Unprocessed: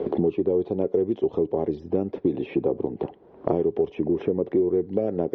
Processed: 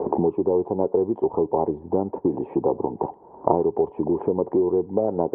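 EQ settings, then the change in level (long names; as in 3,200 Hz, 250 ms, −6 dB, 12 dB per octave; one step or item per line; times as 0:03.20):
low-pass with resonance 920 Hz, resonance Q 7.5
high-frequency loss of the air 200 metres
0.0 dB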